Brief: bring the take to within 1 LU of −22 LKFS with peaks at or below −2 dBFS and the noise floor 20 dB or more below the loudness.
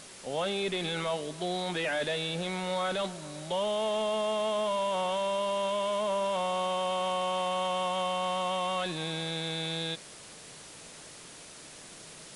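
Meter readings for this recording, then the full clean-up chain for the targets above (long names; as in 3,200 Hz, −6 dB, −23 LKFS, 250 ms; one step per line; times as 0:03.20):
background noise floor −49 dBFS; target noise floor −51 dBFS; integrated loudness −31.0 LKFS; sample peak −21.0 dBFS; target loudness −22.0 LKFS
→ broadband denoise 6 dB, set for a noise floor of −49 dBFS
level +9 dB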